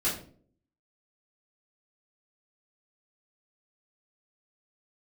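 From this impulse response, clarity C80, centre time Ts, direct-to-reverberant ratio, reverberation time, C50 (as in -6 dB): 11.5 dB, 32 ms, -10.0 dB, 0.50 s, 6.0 dB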